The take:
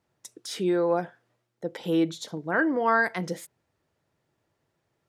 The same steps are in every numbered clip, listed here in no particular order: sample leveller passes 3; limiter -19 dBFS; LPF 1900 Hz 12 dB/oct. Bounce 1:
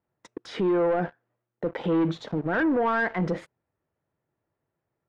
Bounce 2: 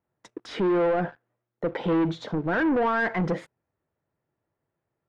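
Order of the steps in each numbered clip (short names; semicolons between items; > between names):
sample leveller > limiter > LPF; limiter > sample leveller > LPF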